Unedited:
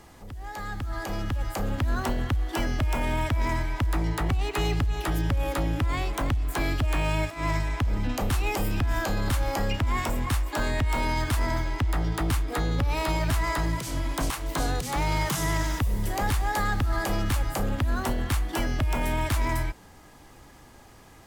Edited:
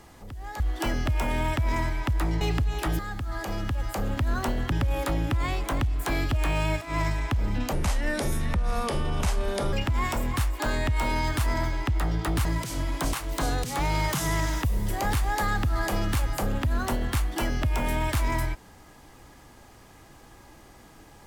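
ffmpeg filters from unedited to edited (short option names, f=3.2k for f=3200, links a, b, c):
-filter_complex "[0:a]asplit=8[a][b][c][d][e][f][g][h];[a]atrim=end=0.602[i];[b]atrim=start=2.328:end=4.142[j];[c]atrim=start=4.628:end=5.212[k];[d]atrim=start=0.598:end=2.332[l];[e]atrim=start=5.208:end=8.224[m];[f]atrim=start=8.22:end=9.66,asetpts=PTS-STARTPTS,asetrate=31752,aresample=44100[n];[g]atrim=start=9.656:end=12.382[o];[h]atrim=start=13.618[p];[i][j]acrossfade=d=0.004:c1=hsin:c2=hsin[q];[q][k]acrossfade=d=0.004:c1=hsin:c2=hsin[r];[r][l]acrossfade=d=0.004:c1=hsin:c2=hsin[s];[s][m]acrossfade=d=0.004:c1=hsin:c2=hsin[t];[t][n]acrossfade=d=0.004:c1=hsin:c2=hsin[u];[u][o]acrossfade=d=0.004:c1=hsin:c2=hsin[v];[v][p]acrossfade=d=0.004:c1=hsin:c2=hsin"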